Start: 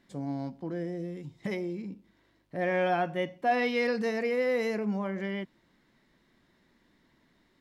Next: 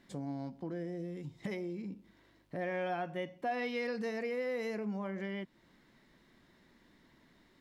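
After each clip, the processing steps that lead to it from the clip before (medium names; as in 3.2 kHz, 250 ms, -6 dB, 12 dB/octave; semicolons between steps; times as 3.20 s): compression 2:1, threshold -44 dBFS, peak gain reduction 12 dB; trim +2 dB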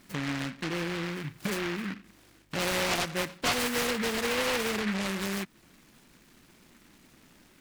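delay time shaken by noise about 1.7 kHz, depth 0.3 ms; trim +7 dB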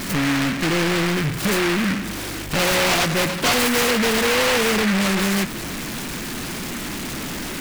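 power-law waveshaper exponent 0.35; trim +4.5 dB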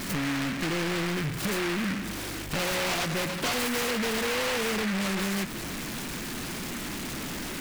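compression, threshold -21 dBFS, peak gain reduction 4.5 dB; trim -6 dB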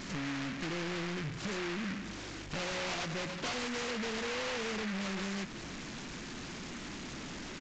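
resampled via 16 kHz; trim -8 dB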